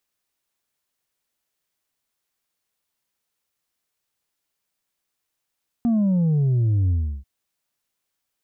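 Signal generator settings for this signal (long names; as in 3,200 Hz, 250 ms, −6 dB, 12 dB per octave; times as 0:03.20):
bass drop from 240 Hz, over 1.39 s, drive 3 dB, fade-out 0.34 s, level −17 dB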